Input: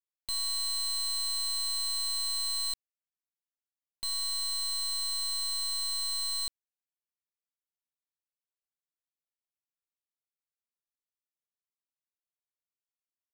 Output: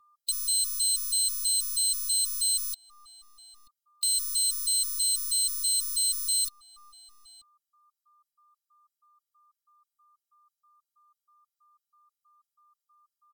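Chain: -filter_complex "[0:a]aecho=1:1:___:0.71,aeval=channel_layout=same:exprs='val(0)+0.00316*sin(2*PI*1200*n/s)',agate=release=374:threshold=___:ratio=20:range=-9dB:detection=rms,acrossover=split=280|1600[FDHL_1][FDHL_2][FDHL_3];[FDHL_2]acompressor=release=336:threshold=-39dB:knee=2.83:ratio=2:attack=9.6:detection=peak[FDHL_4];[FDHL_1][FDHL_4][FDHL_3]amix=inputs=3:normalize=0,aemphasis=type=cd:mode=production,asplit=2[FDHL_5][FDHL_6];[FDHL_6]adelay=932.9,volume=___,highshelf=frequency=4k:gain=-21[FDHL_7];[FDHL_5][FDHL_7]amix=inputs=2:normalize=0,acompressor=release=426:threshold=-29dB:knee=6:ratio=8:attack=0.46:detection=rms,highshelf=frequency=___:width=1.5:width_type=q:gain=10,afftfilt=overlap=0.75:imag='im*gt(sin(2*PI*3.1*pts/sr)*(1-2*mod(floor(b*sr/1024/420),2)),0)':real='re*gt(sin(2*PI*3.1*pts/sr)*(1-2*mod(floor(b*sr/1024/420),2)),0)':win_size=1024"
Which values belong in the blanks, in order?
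4, -48dB, -20dB, 2.7k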